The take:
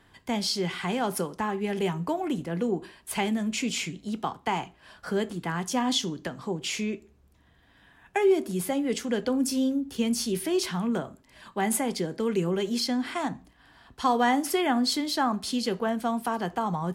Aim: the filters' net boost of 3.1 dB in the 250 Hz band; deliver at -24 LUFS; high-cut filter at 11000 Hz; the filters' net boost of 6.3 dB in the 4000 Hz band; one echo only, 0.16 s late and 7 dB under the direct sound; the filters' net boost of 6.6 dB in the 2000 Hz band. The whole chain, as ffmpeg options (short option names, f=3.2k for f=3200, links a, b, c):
-af "lowpass=11k,equalizer=f=250:t=o:g=3.5,equalizer=f=2k:t=o:g=6.5,equalizer=f=4k:t=o:g=6,aecho=1:1:160:0.447,volume=0.5dB"